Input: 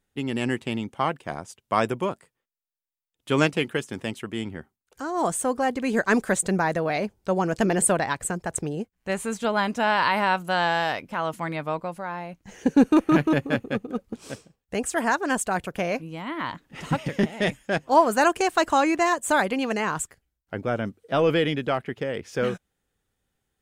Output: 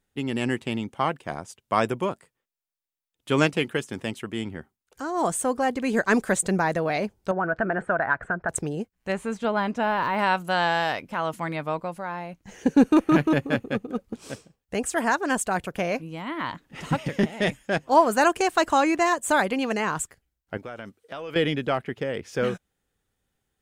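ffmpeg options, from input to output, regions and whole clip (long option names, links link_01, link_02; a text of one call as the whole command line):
ffmpeg -i in.wav -filter_complex "[0:a]asettb=1/sr,asplit=3[link_01][link_02][link_03];[link_01]atrim=end=7.314[link_04];[link_02]atrim=start=7.31:end=8.49,asetpts=PTS-STARTPTS,afade=type=in:duration=0.004:curve=qsin,afade=type=out:start_time=1.176:duration=0.004:curve=qsin,equalizer=frequency=660:width_type=o:width=0.24:gain=9,acompressor=threshold=-29dB:ratio=2:attack=3.2:release=140:knee=1:detection=peak,lowpass=frequency=1500:width_type=q:width=6.6[link_05];[link_03]atrim=start=8.486[link_06];[link_04][link_05]acrossfade=duration=0.004:curve1=hsin:curve2=qsin[link_07];[link_07][link_06]acrossfade=duration=0.004:curve1=qsin:curve2=hsin,asettb=1/sr,asplit=3[link_08][link_09][link_10];[link_08]atrim=end=9.124[link_11];[link_09]atrim=start=9.12:end=10.19,asetpts=PTS-STARTPTS,afade=type=in:duration=0.004:curve=qsin,afade=type=out:start_time=1.066:duration=0.004:curve=qsin,lowpass=frequency=2600:poles=1,deesser=0.95[link_12];[link_10]atrim=start=10.186[link_13];[link_11][link_12]acrossfade=duration=0.004:curve1=hsin:curve2=qsin[link_14];[link_14][link_13]acrossfade=duration=0.004:curve1=qsin:curve2=hsin,asettb=1/sr,asplit=3[link_15][link_16][link_17];[link_15]atrim=end=20.574[link_18];[link_16]atrim=start=20.57:end=21.36,asetpts=PTS-STARTPTS,afade=type=in:duration=0.004:curve=qsin,afade=type=out:start_time=0.786:duration=0.004:curve=qsin,lowshelf=frequency=460:gain=-11,acompressor=threshold=-32dB:ratio=6:attack=3.2:release=140:knee=1:detection=peak[link_19];[link_17]atrim=start=21.356[link_20];[link_18][link_19]acrossfade=duration=0.004:curve1=hsin:curve2=qsin[link_21];[link_21][link_20]acrossfade=duration=0.004:curve1=qsin:curve2=hsin" out.wav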